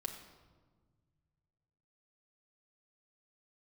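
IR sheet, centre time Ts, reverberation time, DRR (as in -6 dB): 25 ms, 1.5 s, 2.5 dB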